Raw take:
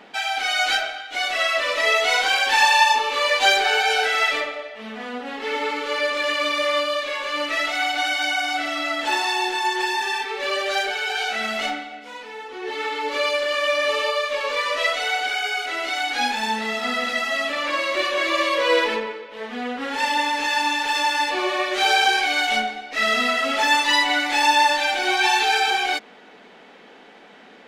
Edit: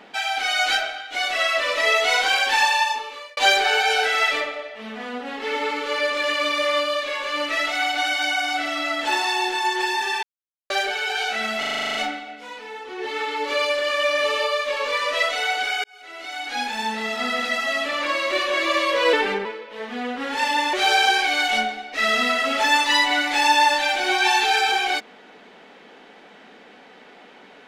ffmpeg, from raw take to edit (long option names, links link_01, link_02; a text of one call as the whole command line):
ffmpeg -i in.wav -filter_complex "[0:a]asplit=17[link_01][link_02][link_03][link_04][link_05][link_06][link_07][link_08][link_09][link_10][link_11][link_12][link_13][link_14][link_15][link_16][link_17];[link_01]atrim=end=3.37,asetpts=PTS-STARTPTS,afade=type=out:start_time=2.4:duration=0.97[link_18];[link_02]atrim=start=3.37:end=10.23,asetpts=PTS-STARTPTS,afade=type=in:duration=0.004:curve=hsin,afade=type=out:start_time=6.856:duration=0.004:curve=hsin[link_19];[link_03]atrim=start=10.23:end=10.7,asetpts=PTS-STARTPTS,volume=0[link_20];[link_04]atrim=start=10.7:end=11.632,asetpts=PTS-STARTPTS,afade=type=in:duration=0.004:curve=hsin[link_21];[link_05]atrim=start=11.588:end=11.632[link_22];[link_06]atrim=start=11.588:end=11.632[link_23];[link_07]atrim=start=11.588:end=11.632[link_24];[link_08]atrim=start=11.588:end=11.632[link_25];[link_09]atrim=start=11.588:end=11.632[link_26];[link_10]atrim=start=11.588:end=11.632[link_27];[link_11]atrim=start=11.588:end=11.632[link_28];[link_12]atrim=start=11.588:end=11.632[link_29];[link_13]atrim=start=11.588:end=15.48,asetpts=PTS-STARTPTS,afade=type=out:start_time=3.888:duration=0.004:curve=hsin[link_30];[link_14]atrim=start=15.48:end=18.774,asetpts=PTS-STARTPTS,afade=type=in:duration=1.76:curve=qsin[link_31];[link_15]atrim=start=18.77:end=19.06,asetpts=PTS-STARTPTS,asetrate=39690,aresample=44100[link_32];[link_16]atrim=start=19.056:end=20.342[link_33];[link_17]atrim=start=21.718[link_34];[link_18][link_19][link_20][link_21]concat=n=4:v=0:a=1[link_35];[link_35][link_22]acrossfade=duration=0.004:curve1=hsin:curve2=hsin[link_36];[link_36][link_23]acrossfade=duration=0.004:curve1=hsin:curve2=hsin[link_37];[link_37][link_24]acrossfade=duration=0.004:curve1=hsin:curve2=hsin[link_38];[link_38][link_25]acrossfade=duration=0.004:curve1=hsin:curve2=hsin[link_39];[link_39][link_26]acrossfade=duration=0.004:curve1=hsin:curve2=hsin[link_40];[link_40][link_27]acrossfade=duration=0.004:curve1=hsin:curve2=hsin[link_41];[link_41][link_28]acrossfade=duration=0.004:curve1=hsin:curve2=hsin[link_42];[link_42][link_29]acrossfade=duration=0.004:curve1=hsin:curve2=hsin[link_43];[link_30][link_31]concat=n=2:v=0:a=1[link_44];[link_43][link_44]acrossfade=duration=0.004:curve1=hsin:curve2=hsin[link_45];[link_45][link_32]acrossfade=duration=0.004:curve1=hsin:curve2=hsin[link_46];[link_46][link_33]acrossfade=duration=0.004:curve1=hsin:curve2=hsin[link_47];[link_47][link_34]acrossfade=duration=0.004:curve1=hsin:curve2=hsin" out.wav